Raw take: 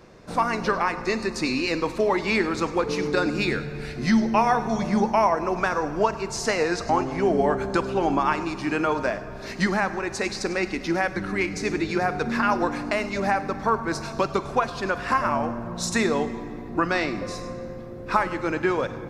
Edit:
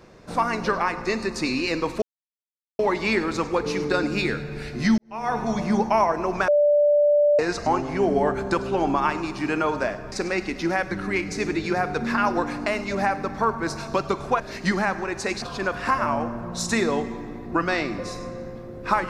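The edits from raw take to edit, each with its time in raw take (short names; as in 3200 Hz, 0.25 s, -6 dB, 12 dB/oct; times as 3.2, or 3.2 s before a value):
2.02 insert silence 0.77 s
4.21–4.61 fade in quadratic
5.71–6.62 bleep 587 Hz -14.5 dBFS
9.35–10.37 move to 14.65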